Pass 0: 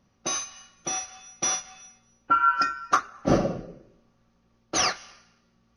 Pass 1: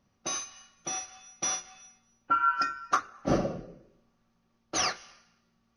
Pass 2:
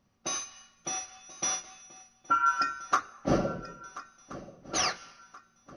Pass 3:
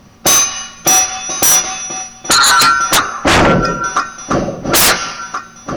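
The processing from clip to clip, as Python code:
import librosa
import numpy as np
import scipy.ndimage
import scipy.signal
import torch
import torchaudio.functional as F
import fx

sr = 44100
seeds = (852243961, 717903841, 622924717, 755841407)

y1 = fx.hum_notches(x, sr, base_hz=60, count=9)
y1 = F.gain(torch.from_numpy(y1), -4.5).numpy()
y2 = fx.echo_swing(y1, sr, ms=1377, ratio=3, feedback_pct=38, wet_db=-17.5)
y3 = fx.fold_sine(y2, sr, drive_db=17, ceiling_db=-13.5)
y3 = F.gain(torch.from_numpy(y3), 8.0).numpy()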